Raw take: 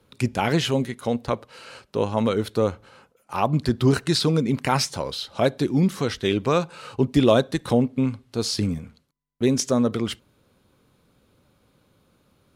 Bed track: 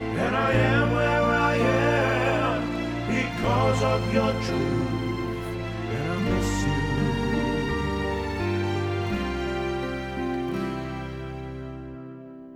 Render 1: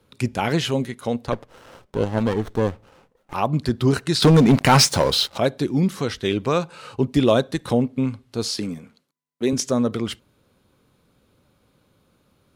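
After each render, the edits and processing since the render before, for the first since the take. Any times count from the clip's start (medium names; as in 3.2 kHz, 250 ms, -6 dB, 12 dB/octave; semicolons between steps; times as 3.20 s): 1.32–3.34 s: sliding maximum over 17 samples; 4.22–5.38 s: waveshaping leveller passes 3; 8.48–9.53 s: high-pass 210 Hz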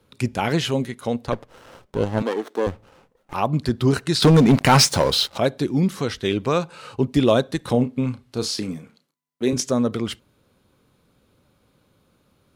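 2.22–2.67 s: high-pass 280 Hz 24 dB/octave; 7.71–9.62 s: doubling 32 ms -10 dB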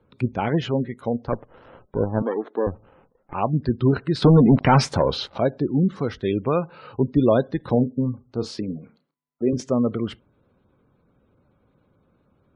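low-pass 1.4 kHz 6 dB/octave; spectral gate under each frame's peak -30 dB strong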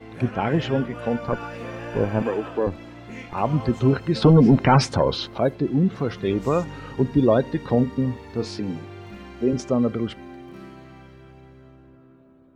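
add bed track -12.5 dB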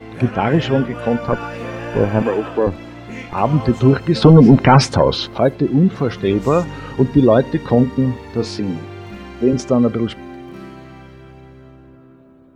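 trim +6.5 dB; peak limiter -1 dBFS, peak gain reduction 1.5 dB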